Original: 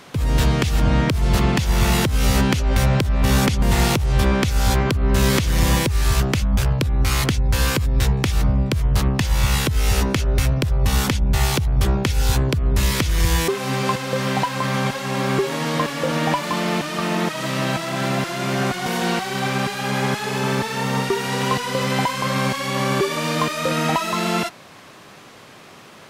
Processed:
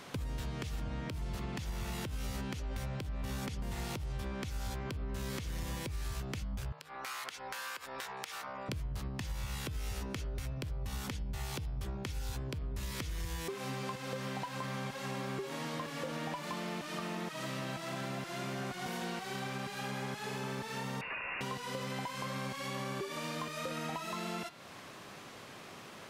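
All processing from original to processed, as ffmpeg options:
-filter_complex "[0:a]asettb=1/sr,asplit=3[a][b][c];[a]atrim=end=6.724[d];[b]atrim=start=6.72:end=8.69,asetpts=PTS-STARTPTS,afade=t=in:d=0.004:c=qsin,afade=t=out:st=1.966:d=0.004:c=qsin,highpass=690,equalizer=f=1.3k:t=o:w=1.7:g=7.5,acompressor=threshold=-32dB:ratio=4:attack=3.2:release=140:knee=1:detection=peak[e];[c]atrim=start=8.686[f];[d][e]acrossfade=d=0.004:c1=hsin:c2=qsin[g];[g][f]acrossfade=d=0.004:c1=qsin:c2=hsin,asettb=1/sr,asplit=3[h][i][j];[h]atrim=end=21.014[k];[i]atrim=start=21.01:end=21.41,asetpts=PTS-STARTPTS,afade=t=in:d=0.004:c=qsin,afade=t=out:st=0.396:d=0.004:c=qsin,highpass=f=70:w=0.5412,highpass=f=70:w=1.3066,aeval=exprs='(mod(7.08*val(0)+1,2)-1)/7.08':c=same,lowpass=f=2.5k:t=q:w=0.5098,lowpass=f=2.5k:t=q:w=0.6013,lowpass=f=2.5k:t=q:w=0.9,lowpass=f=2.5k:t=q:w=2.563,afreqshift=-2900[l];[j]atrim=start=21.406[m];[k][l]acrossfade=d=0.004:c1=hsin:c2=qsin[n];[n][m]acrossfade=d=0.004:c1=qsin:c2=hsin,bandreject=f=153.7:t=h:w=4,bandreject=f=307.4:t=h:w=4,bandreject=f=461.1:t=h:w=4,bandreject=f=614.8:t=h:w=4,bandreject=f=768.5:t=h:w=4,bandreject=f=922.2:t=h:w=4,bandreject=f=1.0759k:t=h:w=4,bandreject=f=1.2296k:t=h:w=4,bandreject=f=1.3833k:t=h:w=4,bandreject=f=1.537k:t=h:w=4,bandreject=f=1.6907k:t=h:w=4,bandreject=f=1.8444k:t=h:w=4,bandreject=f=1.9981k:t=h:w=4,bandreject=f=2.1518k:t=h:w=4,bandreject=f=2.3055k:t=h:w=4,bandreject=f=2.4592k:t=h:w=4,bandreject=f=2.6129k:t=h:w=4,bandreject=f=2.7666k:t=h:w=4,bandreject=f=2.9203k:t=h:w=4,bandreject=f=3.074k:t=h:w=4,bandreject=f=3.2277k:t=h:w=4,bandreject=f=3.3814k:t=h:w=4,bandreject=f=3.5351k:t=h:w=4,bandreject=f=3.6888k:t=h:w=4,bandreject=f=3.8425k:t=h:w=4,bandreject=f=3.9962k:t=h:w=4,bandreject=f=4.1499k:t=h:w=4,bandreject=f=4.3036k:t=h:w=4,bandreject=f=4.4573k:t=h:w=4,bandreject=f=4.611k:t=h:w=4,bandreject=f=4.7647k:t=h:w=4,bandreject=f=4.9184k:t=h:w=4,bandreject=f=5.0721k:t=h:w=4,bandreject=f=5.2258k:t=h:w=4,acompressor=threshold=-31dB:ratio=6,volume=-6dB"

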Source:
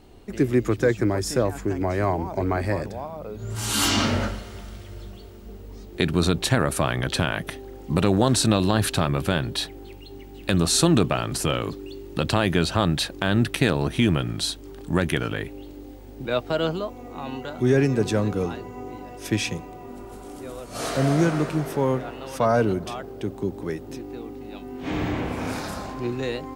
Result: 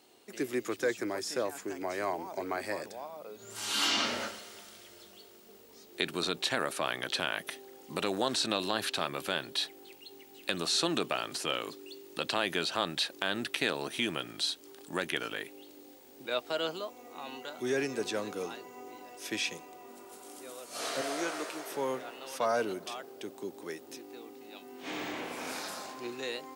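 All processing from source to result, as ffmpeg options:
-filter_complex "[0:a]asettb=1/sr,asplit=3[a][b][c];[a]atrim=end=21.014[d];[b]atrim=start=21.01:end=21.71,asetpts=PTS-STARTPTS,afade=t=in:d=0.004:c=qsin,afade=t=out:st=0.696:d=0.004:c=qsin,highpass=350,asplit=2[e][f];[f]adelay=17,volume=-12.5dB[g];[e][g]amix=inputs=2:normalize=0,atrim=end_sample=30870[h];[c]atrim=start=21.706[i];[d][h]acrossfade=d=0.004:c1=hsin:c2=qsin[j];[j][i]acrossfade=d=0.004:c1=qsin:c2=hsin,highpass=340,acrossover=split=4700[k][l];[l]acompressor=threshold=-43dB:ratio=4:attack=1:release=60[m];[k][m]amix=inputs=2:normalize=0,highshelf=f=2.7k:g=11,volume=-9dB"

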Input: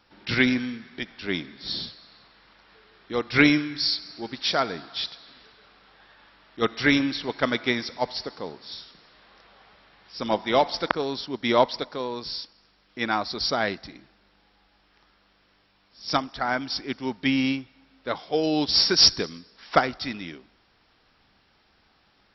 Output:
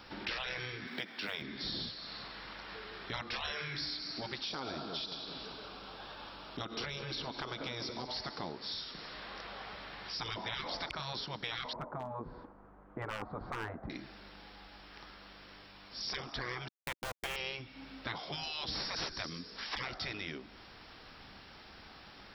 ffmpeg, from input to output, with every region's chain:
-filter_complex "[0:a]asettb=1/sr,asplit=3[a][b][c];[a]atrim=end=0.874[d];[b]atrim=start=0.87:end=1.42,asetpts=PTS-STARTPTS,afade=t=in:d=0.004:c=qsin,afade=t=out:st=0.546:d=0.004:c=qsin,highpass=210,acrusher=bits=8:mode=log:mix=0:aa=0.000001[e];[c]atrim=start=1.416[f];[d][e]acrossfade=d=0.004:c1=hsin:c2=qsin[g];[g][f]acrossfade=d=0.004:c1=qsin:c2=hsin,asettb=1/sr,asplit=3[h][i][j];[h]atrim=end=4.414[k];[i]atrim=start=4.41:end=8.12,asetpts=PTS-STARTPTS,afade=t=in:d=0.004:c=qsin,afade=t=out:st=3.706:d=0.004:c=qsin,equalizer=f=1.9k:w=2.8:g=-12.5,acompressor=threshold=-29dB:ratio=6:attack=3.2:release=140:knee=1:detection=peak,asplit=2[l][m];[m]adelay=193,lowpass=f=2k:p=1,volume=-11.5dB,asplit=2[n][o];[o]adelay=193,lowpass=f=2k:p=1,volume=0.52,asplit=2[p][q];[q]adelay=193,lowpass=f=2k:p=1,volume=0.52,asplit=2[r][s];[s]adelay=193,lowpass=f=2k:p=1,volume=0.52,asplit=2[t][u];[u]adelay=193,lowpass=f=2k:p=1,volume=0.52,asplit=2[v][w];[w]adelay=193,lowpass=f=2k:p=1,volume=0.52[x];[l][n][p][r][t][v][x]amix=inputs=7:normalize=0,atrim=end_sample=163611[y];[j]atrim=start=8.116[z];[k][y]acrossfade=d=0.004:c1=hsin:c2=qsin[aa];[aa][z]acrossfade=d=0.004:c1=qsin:c2=hsin,asettb=1/sr,asplit=3[ab][ac][ad];[ab]atrim=end=11.734[ae];[ac]atrim=start=11.73:end=13.9,asetpts=PTS-STARTPTS,afade=t=in:d=0.004:c=qsin,afade=t=out:st=2.166:d=0.004:c=qsin,lowpass=f=1.2k:w=0.5412,lowpass=f=1.2k:w=1.3066,asoftclip=type=hard:threshold=-20.5dB[af];[ad]atrim=start=13.896[ag];[ae][af]acrossfade=d=0.004:c1=hsin:c2=qsin[ah];[ah][ag]acrossfade=d=0.004:c1=qsin:c2=hsin,asettb=1/sr,asplit=3[ai][aj][ak];[ai]atrim=end=16.684[al];[aj]atrim=start=16.68:end=17.36,asetpts=PTS-STARTPTS,afade=t=in:d=0.004:c=qsin,afade=t=out:st=0.676:d=0.004:c=qsin,lowpass=2.3k,aeval=exprs='val(0)+0.00282*(sin(2*PI*50*n/s)+sin(2*PI*2*50*n/s)/2+sin(2*PI*3*50*n/s)/3+sin(2*PI*4*50*n/s)/4+sin(2*PI*5*50*n/s)/5)':c=same,aeval=exprs='val(0)*gte(abs(val(0)),0.0376)':c=same[am];[ak]atrim=start=17.356[an];[al][am]acrossfade=d=0.004:c1=hsin:c2=qsin[ao];[ao][an]acrossfade=d=0.004:c1=qsin:c2=hsin,acrossover=split=2600[ap][aq];[aq]acompressor=threshold=-37dB:ratio=4:attack=1:release=60[ar];[ap][ar]amix=inputs=2:normalize=0,afftfilt=real='re*lt(hypot(re,im),0.0891)':imag='im*lt(hypot(re,im),0.0891)':win_size=1024:overlap=0.75,acompressor=threshold=-50dB:ratio=3,volume=9.5dB"

